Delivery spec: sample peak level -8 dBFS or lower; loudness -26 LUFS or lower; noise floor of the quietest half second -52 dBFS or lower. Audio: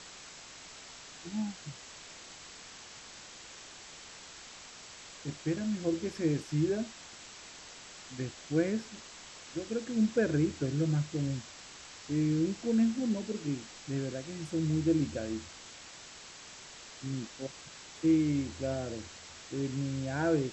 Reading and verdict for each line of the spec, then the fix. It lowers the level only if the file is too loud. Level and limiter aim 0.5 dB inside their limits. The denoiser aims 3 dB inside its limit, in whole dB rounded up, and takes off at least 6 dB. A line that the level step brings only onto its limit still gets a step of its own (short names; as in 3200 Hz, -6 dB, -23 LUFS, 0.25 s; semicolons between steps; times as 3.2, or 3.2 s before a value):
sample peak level -17.0 dBFS: OK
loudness -33.0 LUFS: OK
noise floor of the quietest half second -50 dBFS: fail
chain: denoiser 6 dB, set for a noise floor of -50 dBFS